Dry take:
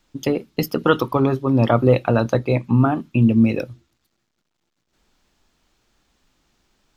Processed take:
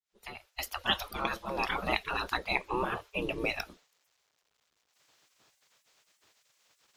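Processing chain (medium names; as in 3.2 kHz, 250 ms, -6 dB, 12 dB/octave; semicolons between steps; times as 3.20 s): fade-in on the opening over 0.96 s; spectral gate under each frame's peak -20 dB weak; trim +3 dB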